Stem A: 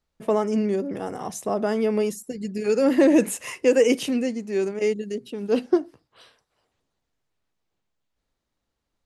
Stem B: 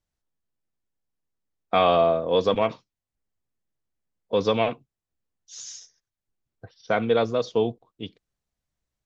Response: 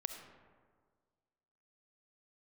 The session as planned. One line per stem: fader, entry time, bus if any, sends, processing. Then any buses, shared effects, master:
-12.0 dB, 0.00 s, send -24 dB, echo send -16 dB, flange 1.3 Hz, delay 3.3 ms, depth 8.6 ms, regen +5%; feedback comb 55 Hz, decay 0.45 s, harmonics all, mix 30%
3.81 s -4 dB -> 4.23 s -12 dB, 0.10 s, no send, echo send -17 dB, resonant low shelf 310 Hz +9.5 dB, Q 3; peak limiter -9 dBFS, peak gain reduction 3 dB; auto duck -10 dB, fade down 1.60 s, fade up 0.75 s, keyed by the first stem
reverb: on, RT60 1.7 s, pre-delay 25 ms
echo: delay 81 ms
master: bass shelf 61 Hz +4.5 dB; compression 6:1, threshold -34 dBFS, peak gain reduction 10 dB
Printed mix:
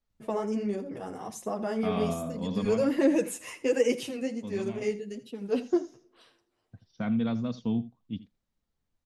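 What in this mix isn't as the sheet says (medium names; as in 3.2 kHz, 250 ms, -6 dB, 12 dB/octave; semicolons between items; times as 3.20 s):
stem A -12.0 dB -> -2.5 dB; master: missing compression 6:1, threshold -34 dBFS, peak gain reduction 10 dB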